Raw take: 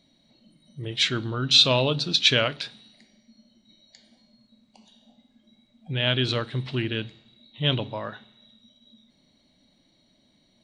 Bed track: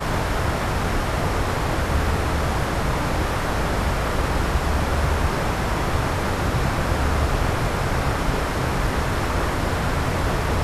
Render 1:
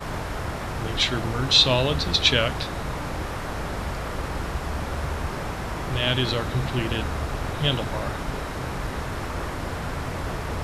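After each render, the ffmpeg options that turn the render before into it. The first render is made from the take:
-filter_complex "[1:a]volume=-7.5dB[a];[0:a][a]amix=inputs=2:normalize=0"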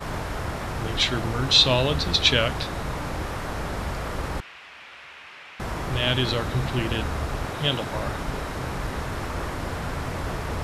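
-filter_complex "[0:a]asettb=1/sr,asplit=3[a][b][c];[a]atrim=end=4.404[d];[b]atrim=start=4.4:end=5.6,asetpts=PTS-STARTPTS,afade=t=in:d=0.004:c=qsin,afade=t=out:st=1.196:d=0.004:c=qsin,bandpass=f=2.6k:t=q:w=2.4[e];[c]atrim=start=5.596[f];[d][e]acrossfade=d=0.004:c1=hsin:c2=qsin[g];[g][f]acrossfade=d=0.004:c1=qsin:c2=hsin,asettb=1/sr,asplit=3[h][i][j];[h]atrim=end=7.454[k];[i]atrim=start=7.45:end=7.95,asetpts=PTS-STARTPTS,afade=t=in:d=0.004:c=qsin,afade=t=out:st=0.496:d=0.004:c=qsin,lowshelf=f=85:g=-11.5[l];[j]atrim=start=7.946[m];[k][l]acrossfade=d=0.004:c1=hsin:c2=qsin[n];[n][m]acrossfade=d=0.004:c1=qsin:c2=hsin"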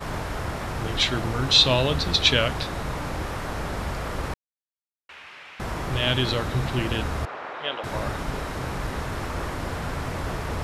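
-filter_complex "[0:a]asettb=1/sr,asplit=3[a][b][c];[a]atrim=end=7.254[d];[b]atrim=start=7.25:end=7.84,asetpts=PTS-STARTPTS,afade=t=in:d=0.004:c=qsin,afade=t=out:st=0.586:d=0.004:c=qsin,highpass=540,lowpass=2.4k[e];[c]atrim=start=7.836[f];[d][e]acrossfade=d=0.004:c1=hsin:c2=qsin[g];[g][f]acrossfade=d=0.004:c1=qsin:c2=hsin,asplit=3[h][i][j];[h]atrim=end=4.34,asetpts=PTS-STARTPTS,afade=t=out:st=4.336:d=0.004:c=hsin[k];[i]atrim=start=4.34:end=5.09,asetpts=PTS-STARTPTS,volume=0[l];[j]atrim=start=5.09,asetpts=PTS-STARTPTS,afade=t=in:d=0.004:c=hsin[m];[k][l][m]concat=n=3:v=0:a=1"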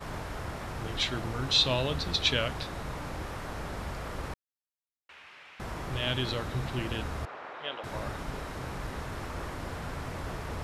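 -af "volume=-7.5dB"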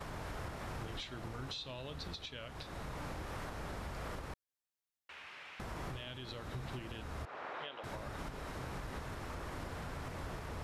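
-af "acompressor=threshold=-37dB:ratio=6,alimiter=level_in=9dB:limit=-24dB:level=0:latency=1:release=399,volume=-9dB"

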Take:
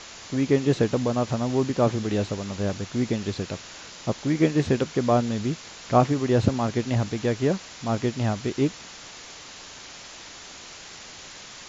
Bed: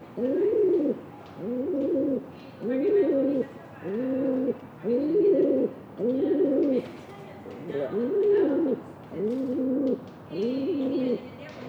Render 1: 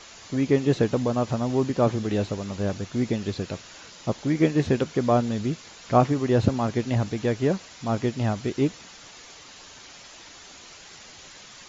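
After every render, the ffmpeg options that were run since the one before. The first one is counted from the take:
-af "afftdn=nr=6:nf=-43"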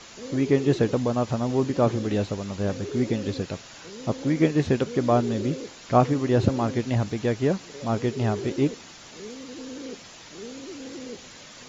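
-filter_complex "[1:a]volume=-12dB[a];[0:a][a]amix=inputs=2:normalize=0"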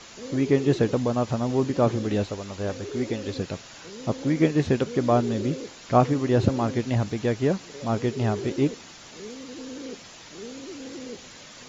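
-filter_complex "[0:a]asettb=1/sr,asplit=3[a][b][c];[a]atrim=end=2.234[d];[b]atrim=start=2.23:end=3.36,asetpts=PTS-STARTPTS,afade=t=in:d=0.004:c=qsin,afade=t=out:st=1.126:d=0.004:c=qsin,equalizer=f=160:w=1.1:g=-8[e];[c]atrim=start=3.356[f];[d][e]acrossfade=d=0.004:c1=hsin:c2=qsin[g];[g][f]acrossfade=d=0.004:c1=qsin:c2=hsin"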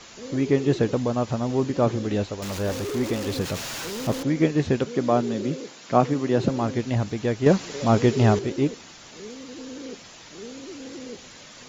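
-filter_complex "[0:a]asettb=1/sr,asplit=3[a][b][c];[a]atrim=end=2.424[d];[b]atrim=start=2.42:end=4.23,asetpts=PTS-STARTPTS,afade=t=in:d=0.004:c=qsin,afade=t=out:st=1.806:d=0.004:c=qsin,aeval=exprs='val(0)+0.5*0.0355*sgn(val(0))':c=same[e];[c]atrim=start=4.226[f];[d][e]acrossfade=d=0.004:c1=hsin:c2=qsin[g];[g][f]acrossfade=d=0.004:c1=qsin:c2=hsin,asettb=1/sr,asplit=3[h][i][j];[h]atrim=end=4.854[k];[i]atrim=start=4.85:end=6.49,asetpts=PTS-STARTPTS,afade=t=in:d=0.004:c=qsin,afade=t=out:st=1.636:d=0.004:c=qsin,highpass=f=130:w=0.5412,highpass=f=130:w=1.3066[l];[j]atrim=start=6.486[m];[k][l]acrossfade=d=0.004:c1=hsin:c2=qsin[n];[n][m]acrossfade=d=0.004:c1=qsin:c2=hsin,asettb=1/sr,asplit=3[o][p][q];[o]atrim=end=7.464[r];[p]atrim=start=7.46:end=8.39,asetpts=PTS-STARTPTS,afade=t=in:d=0.004:c=qsin,afade=t=out:st=0.926:d=0.004:c=qsin,acontrast=80[s];[q]atrim=start=8.386[t];[r][s]acrossfade=d=0.004:c1=hsin:c2=qsin[u];[u][t]acrossfade=d=0.004:c1=qsin:c2=hsin"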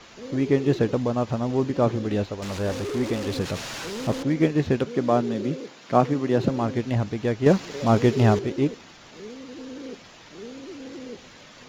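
-af "adynamicsmooth=sensitivity=7.5:basefreq=4.4k"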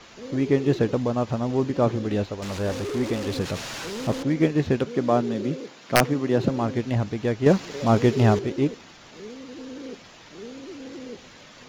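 -af "aeval=exprs='(mod(2.11*val(0)+1,2)-1)/2.11':c=same"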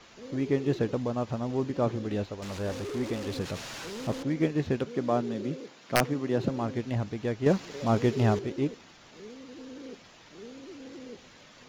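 -af "volume=-6dB"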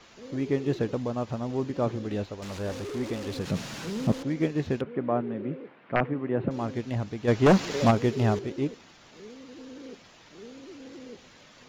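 -filter_complex "[0:a]asettb=1/sr,asplit=3[a][b][c];[a]atrim=end=3.474[d];[b]atrim=start=3.47:end=4.12,asetpts=PTS-STARTPTS,afade=t=in:d=0.004:c=qsin,afade=t=out:st=0.646:d=0.004:c=qsin,equalizer=f=180:t=o:w=1.3:g=12.5[e];[c]atrim=start=4.116[f];[d][e]acrossfade=d=0.004:c1=hsin:c2=qsin[g];[g][f]acrossfade=d=0.004:c1=qsin:c2=hsin,asettb=1/sr,asplit=3[h][i][j];[h]atrim=end=4.814[k];[i]atrim=start=4.81:end=6.51,asetpts=PTS-STARTPTS,afade=t=in:d=0.004:c=qsin,afade=t=out:st=1.696:d=0.004:c=qsin,lowpass=f=2.4k:w=0.5412,lowpass=f=2.4k:w=1.3066[l];[j]atrim=start=6.506[m];[k][l]acrossfade=d=0.004:c1=hsin:c2=qsin[n];[n][m]acrossfade=d=0.004:c1=qsin:c2=hsin,asplit=3[o][p][q];[o]afade=t=out:st=7.27:d=0.02[r];[p]aeval=exprs='0.224*sin(PI/2*2*val(0)/0.224)':c=same,afade=t=in:st=7.27:d=0.02,afade=t=out:st=7.9:d=0.02[s];[q]afade=t=in:st=7.9:d=0.02[t];[r][s][t]amix=inputs=3:normalize=0"

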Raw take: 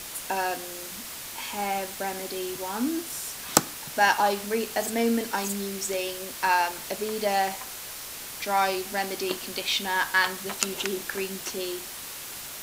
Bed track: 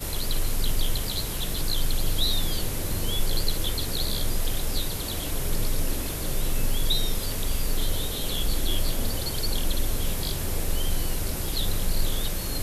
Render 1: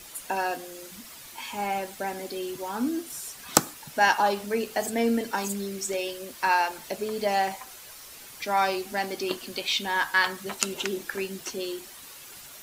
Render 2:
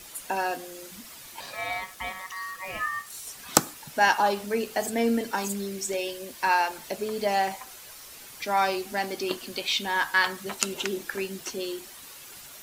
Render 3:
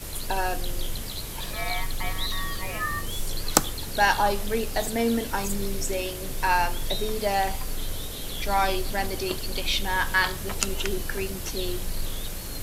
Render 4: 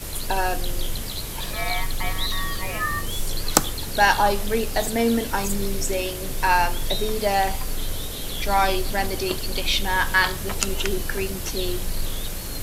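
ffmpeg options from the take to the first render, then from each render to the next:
-af "afftdn=nr=9:nf=-39"
-filter_complex "[0:a]asettb=1/sr,asplit=3[a][b][c];[a]atrim=end=1.404[d];[b]atrim=start=1.4:end=3.27,asetpts=PTS-STARTPTS,afade=t=in:d=0.004:c=qsin,afade=t=out:st=1.866:d=0.004:c=qsin,aeval=exprs='val(0)*sin(2*PI*1500*n/s)':c=same[e];[c]atrim=start=3.266[f];[d][e]acrossfade=d=0.004:c1=hsin:c2=qsin[g];[g][f]acrossfade=d=0.004:c1=qsin:c2=hsin,asettb=1/sr,asplit=3[h][i][j];[h]atrim=end=5.734[k];[i]atrim=start=5.73:end=6.47,asetpts=PTS-STARTPTS,afade=t=in:d=0.004:c=qsin,afade=t=out:st=0.736:d=0.004:c=qsin,bandreject=f=1.3k:w=7.1[l];[j]atrim=start=6.466[m];[k][l]acrossfade=d=0.004:c1=hsin:c2=qsin[n];[n][m]acrossfade=d=0.004:c1=qsin:c2=hsin"
-filter_complex "[1:a]volume=-5.5dB[a];[0:a][a]amix=inputs=2:normalize=0"
-af "volume=3.5dB,alimiter=limit=-2dB:level=0:latency=1"

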